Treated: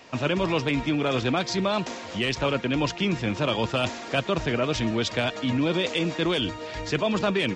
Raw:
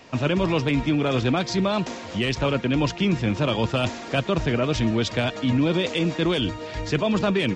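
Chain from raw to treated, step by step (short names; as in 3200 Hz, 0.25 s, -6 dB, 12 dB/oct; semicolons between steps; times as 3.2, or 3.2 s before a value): low shelf 280 Hz -6.5 dB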